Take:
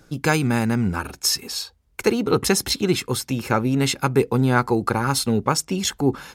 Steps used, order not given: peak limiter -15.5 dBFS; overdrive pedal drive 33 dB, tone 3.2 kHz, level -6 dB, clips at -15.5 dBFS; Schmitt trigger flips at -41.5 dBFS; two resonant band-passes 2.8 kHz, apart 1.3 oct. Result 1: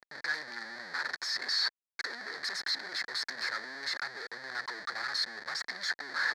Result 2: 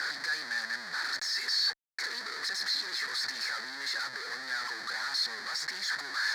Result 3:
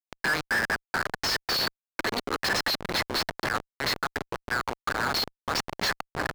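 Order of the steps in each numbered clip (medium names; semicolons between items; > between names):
peak limiter > Schmitt trigger > overdrive pedal > two resonant band-passes; peak limiter > overdrive pedal > Schmitt trigger > two resonant band-passes; peak limiter > two resonant band-passes > Schmitt trigger > overdrive pedal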